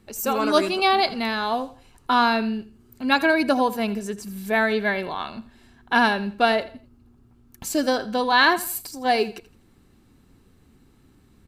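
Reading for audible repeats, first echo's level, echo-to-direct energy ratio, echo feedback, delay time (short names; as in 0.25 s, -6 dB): 2, -17.0 dB, -16.5 dB, 31%, 83 ms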